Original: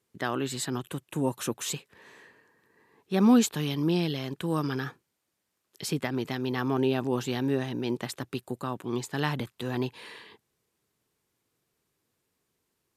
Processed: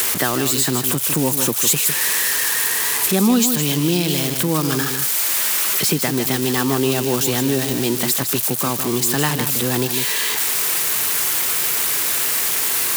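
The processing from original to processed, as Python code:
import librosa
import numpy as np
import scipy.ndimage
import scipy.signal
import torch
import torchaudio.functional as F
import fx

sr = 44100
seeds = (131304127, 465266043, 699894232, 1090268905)

y = x + 0.5 * 10.0 ** (-22.5 / 20.0) * np.diff(np.sign(x), prepend=np.sign(x[:1]))
y = fx.peak_eq(y, sr, hz=11000.0, db=8.0, octaves=1.8, at=(1.67, 3.28))
y = y + 10.0 ** (-9.0 / 20.0) * np.pad(y, (int(154 * sr / 1000.0), 0))[:len(y)]
y = fx.band_squash(y, sr, depth_pct=70)
y = y * librosa.db_to_amplitude(8.5)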